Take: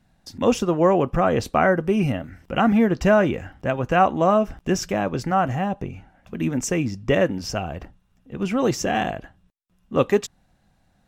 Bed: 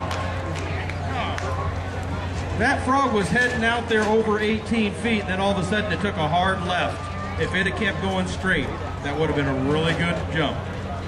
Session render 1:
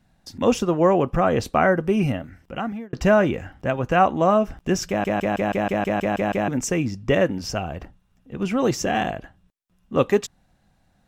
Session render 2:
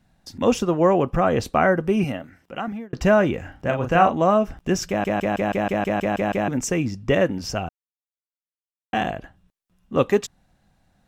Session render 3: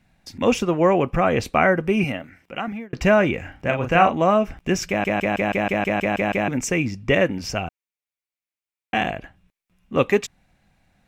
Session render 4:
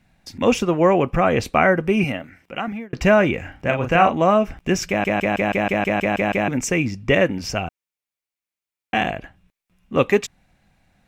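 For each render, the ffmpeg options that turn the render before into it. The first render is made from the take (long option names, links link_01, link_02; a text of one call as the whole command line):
ffmpeg -i in.wav -filter_complex "[0:a]asplit=12[link_01][link_02][link_03][link_04][link_05][link_06][link_07][link_08][link_09][link_10][link_11][link_12];[link_01]atrim=end=2.93,asetpts=PTS-STARTPTS,afade=type=out:start_time=2.09:duration=0.84[link_13];[link_02]atrim=start=2.93:end=5.042,asetpts=PTS-STARTPTS,afade=type=in:duration=0.004:curve=hsin[link_14];[link_03]atrim=start=4.878:end=5.042[link_15];[link_04]atrim=start=4.878:end=5.042[link_16];[link_05]atrim=start=4.878:end=5.042[link_17];[link_06]atrim=start=4.878:end=5.042[link_18];[link_07]atrim=start=4.878:end=5.042[link_19];[link_08]atrim=start=4.878:end=5.042[link_20];[link_09]atrim=start=4.878:end=5.042[link_21];[link_10]atrim=start=4.878:end=5.042[link_22];[link_11]atrim=start=4.878:end=5.042[link_23];[link_12]atrim=start=6.478[link_24];[link_13][link_14]concat=n=2:v=0:a=1[link_25];[link_25][link_15]acrossfade=duration=0.004:curve1=hsin:curve2=hsin[link_26];[link_26][link_16]acrossfade=duration=0.004:curve1=hsin:curve2=hsin[link_27];[link_27][link_17]acrossfade=duration=0.004:curve1=hsin:curve2=hsin[link_28];[link_28][link_18]acrossfade=duration=0.004:curve1=hsin:curve2=hsin[link_29];[link_29][link_19]acrossfade=duration=0.004:curve1=hsin:curve2=hsin[link_30];[link_30][link_20]acrossfade=duration=0.004:curve1=hsin:curve2=hsin[link_31];[link_31][link_21]acrossfade=duration=0.004:curve1=hsin:curve2=hsin[link_32];[link_32][link_22]acrossfade=duration=0.004:curve1=hsin:curve2=hsin[link_33];[link_33][link_23]acrossfade=duration=0.004:curve1=hsin:curve2=hsin[link_34];[link_34][link_24]acrossfade=duration=0.004:curve1=hsin:curve2=hsin" out.wav
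ffmpeg -i in.wav -filter_complex "[0:a]asettb=1/sr,asplit=3[link_01][link_02][link_03];[link_01]atrim=end=2.044[link_04];[link_02]atrim=start=2.04:end=2.68,asetpts=PTS-STARTPTS,afade=type=in:duration=0.004:curve=qsin,afade=type=out:start_time=0.636:duration=0.004:curve=qsin,highpass=frequency=250:poles=1[link_05];[link_03]atrim=start=2.676[link_06];[link_04][link_05]acrossfade=duration=0.004:curve1=hsin:curve2=qsin[link_07];[link_07][link_06]acrossfade=duration=0.004:curve1=qsin:curve2=hsin,asettb=1/sr,asplit=3[link_08][link_09][link_10];[link_08]atrim=end=3.414[link_11];[link_09]atrim=start=3.41:end=4.15,asetpts=PTS-STARTPTS,afade=type=in:duration=0.004:curve=qsin,afade=type=out:start_time=0.736:duration=0.004:curve=qsin,asplit=2[link_12][link_13];[link_13]adelay=36,volume=-5.5dB[link_14];[link_12][link_14]amix=inputs=2:normalize=0,atrim=end_sample=32634[link_15];[link_10]atrim=start=4.146[link_16];[link_11][link_15]acrossfade=duration=0.004:curve1=hsin:curve2=qsin[link_17];[link_17][link_16]acrossfade=duration=0.004:curve1=qsin:curve2=hsin,asplit=3[link_18][link_19][link_20];[link_18]atrim=end=7.69,asetpts=PTS-STARTPTS,afade=type=out:start_time=7.686:duration=0.004:curve=hsin[link_21];[link_19]atrim=start=7.69:end=8.93,asetpts=PTS-STARTPTS,volume=0[link_22];[link_20]atrim=start=8.93,asetpts=PTS-STARTPTS,afade=type=in:duration=0.004:curve=hsin[link_23];[link_21][link_22][link_23]concat=n=3:v=0:a=1" out.wav
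ffmpeg -i in.wav -af "equalizer=frequency=2300:width=2.7:gain=10" out.wav
ffmpeg -i in.wav -af "volume=1.5dB,alimiter=limit=-2dB:level=0:latency=1" out.wav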